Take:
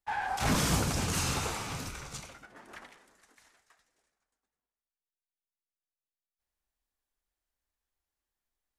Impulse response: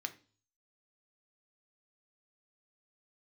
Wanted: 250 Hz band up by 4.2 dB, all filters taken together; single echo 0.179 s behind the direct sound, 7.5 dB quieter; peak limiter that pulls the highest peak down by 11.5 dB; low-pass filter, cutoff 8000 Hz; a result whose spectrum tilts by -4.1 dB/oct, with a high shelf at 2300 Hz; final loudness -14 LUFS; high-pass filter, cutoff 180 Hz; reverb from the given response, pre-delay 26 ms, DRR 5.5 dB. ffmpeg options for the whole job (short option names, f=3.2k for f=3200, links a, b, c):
-filter_complex "[0:a]highpass=180,lowpass=8k,equalizer=f=250:t=o:g=7.5,highshelf=f=2.3k:g=-5.5,alimiter=level_in=2.5dB:limit=-24dB:level=0:latency=1,volume=-2.5dB,aecho=1:1:179:0.422,asplit=2[a][b];[1:a]atrim=start_sample=2205,adelay=26[c];[b][c]afir=irnorm=-1:irlink=0,volume=-5dB[d];[a][d]amix=inputs=2:normalize=0,volume=21dB"